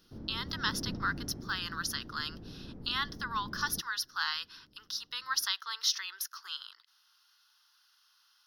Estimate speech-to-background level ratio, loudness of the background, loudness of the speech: 10.5 dB, -45.0 LUFS, -34.5 LUFS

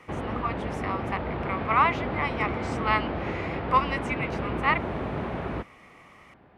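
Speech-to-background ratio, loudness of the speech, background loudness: 3.0 dB, -28.5 LUFS, -31.5 LUFS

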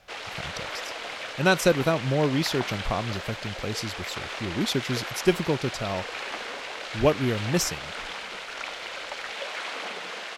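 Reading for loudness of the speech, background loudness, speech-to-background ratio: -27.0 LUFS, -34.0 LUFS, 7.0 dB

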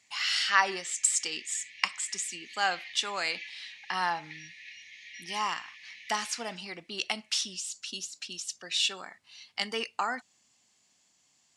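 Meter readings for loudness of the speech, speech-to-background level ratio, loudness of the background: -31.0 LUFS, 14.5 dB, -45.5 LUFS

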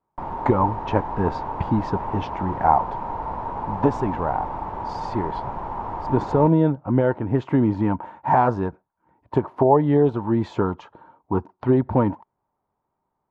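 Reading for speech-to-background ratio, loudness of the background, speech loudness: 8.0 dB, -30.5 LUFS, -22.5 LUFS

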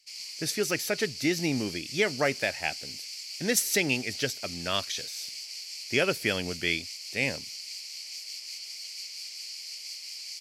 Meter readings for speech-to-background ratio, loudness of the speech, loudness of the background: 8.0 dB, -29.0 LUFS, -37.0 LUFS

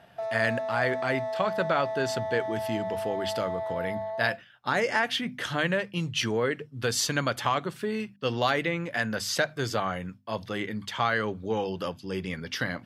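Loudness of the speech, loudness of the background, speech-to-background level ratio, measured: -29.5 LUFS, -33.0 LUFS, 3.5 dB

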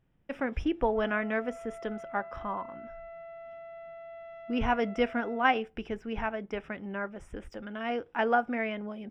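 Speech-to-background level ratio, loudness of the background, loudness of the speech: 14.0 dB, -46.0 LUFS, -32.0 LUFS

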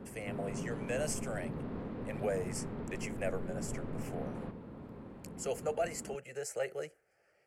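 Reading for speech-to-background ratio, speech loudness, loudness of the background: 2.5 dB, -40.0 LUFS, -42.5 LUFS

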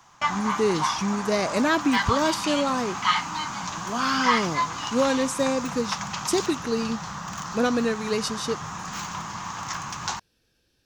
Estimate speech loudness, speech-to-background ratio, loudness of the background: -26.0 LUFS, 3.5 dB, -29.5 LUFS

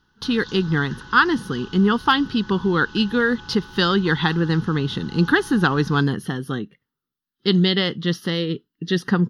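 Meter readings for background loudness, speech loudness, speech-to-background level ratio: -40.5 LUFS, -21.0 LUFS, 19.5 dB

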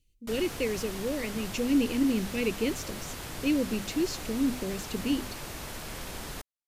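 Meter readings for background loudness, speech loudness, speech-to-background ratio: -39.0 LUFS, -30.5 LUFS, 8.5 dB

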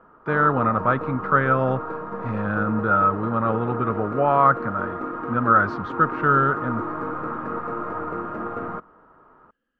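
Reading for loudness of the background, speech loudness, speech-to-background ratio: -30.5 LUFS, -21.5 LUFS, 9.0 dB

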